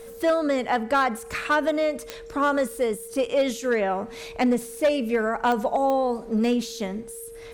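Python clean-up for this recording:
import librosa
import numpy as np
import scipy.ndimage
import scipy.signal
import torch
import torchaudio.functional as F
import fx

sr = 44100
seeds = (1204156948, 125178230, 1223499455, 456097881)

y = fx.fix_declip(x, sr, threshold_db=-15.0)
y = fx.fix_declick_ar(y, sr, threshold=10.0)
y = fx.notch(y, sr, hz=460.0, q=30.0)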